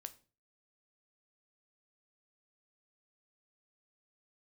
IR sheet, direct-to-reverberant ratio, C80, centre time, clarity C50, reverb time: 10.0 dB, 22.5 dB, 4 ms, 18.0 dB, 0.35 s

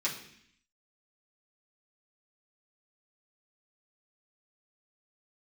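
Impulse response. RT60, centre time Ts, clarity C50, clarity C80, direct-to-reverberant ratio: 0.65 s, 24 ms, 8.0 dB, 11.0 dB, −7.5 dB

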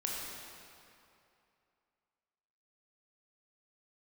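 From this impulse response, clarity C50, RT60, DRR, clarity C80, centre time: −1.5 dB, 2.7 s, −3.5 dB, 0.0 dB, 137 ms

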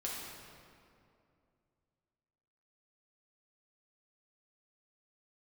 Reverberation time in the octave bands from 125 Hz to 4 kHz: 3.0, 2.9, 2.7, 2.3, 1.9, 1.5 seconds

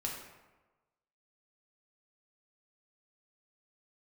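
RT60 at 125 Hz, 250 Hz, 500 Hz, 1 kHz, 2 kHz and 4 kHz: 1.1, 1.1, 1.2, 1.2, 0.95, 0.70 seconds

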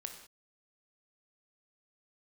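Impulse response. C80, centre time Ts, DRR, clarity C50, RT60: 9.5 dB, 21 ms, 4.5 dB, 7.0 dB, non-exponential decay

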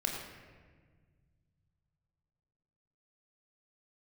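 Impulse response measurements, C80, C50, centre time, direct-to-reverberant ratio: 3.5 dB, 2.5 dB, 61 ms, −0.5 dB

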